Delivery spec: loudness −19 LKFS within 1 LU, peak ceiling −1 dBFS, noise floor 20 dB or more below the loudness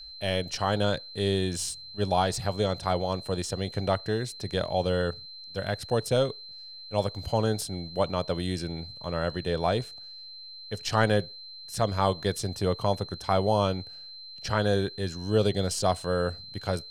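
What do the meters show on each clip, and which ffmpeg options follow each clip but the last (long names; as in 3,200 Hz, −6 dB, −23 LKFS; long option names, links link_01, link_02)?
interfering tone 4,100 Hz; level of the tone −42 dBFS; integrated loudness −28.5 LKFS; sample peak −8.5 dBFS; target loudness −19.0 LKFS
→ -af "bandreject=frequency=4100:width=30"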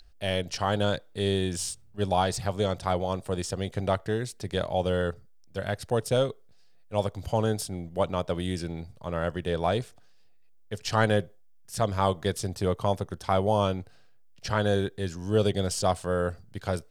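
interfering tone none found; integrated loudness −29.0 LKFS; sample peak −8.5 dBFS; target loudness −19.0 LKFS
→ -af "volume=10dB,alimiter=limit=-1dB:level=0:latency=1"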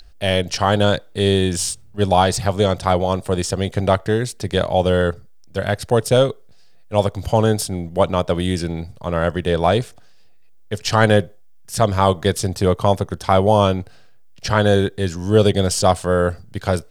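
integrated loudness −19.0 LKFS; sample peak −1.0 dBFS; background noise floor −43 dBFS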